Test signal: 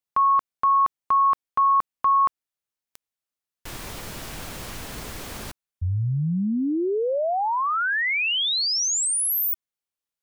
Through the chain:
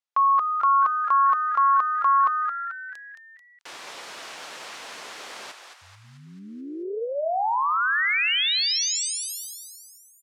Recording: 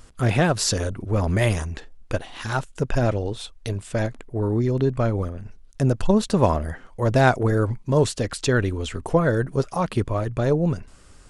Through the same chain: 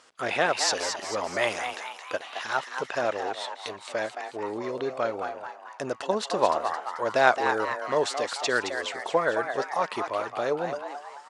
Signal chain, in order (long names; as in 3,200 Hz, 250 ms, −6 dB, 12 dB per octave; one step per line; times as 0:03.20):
band-pass filter 570–6,300 Hz
on a send: echo with shifted repeats 219 ms, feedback 51%, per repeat +140 Hz, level −7 dB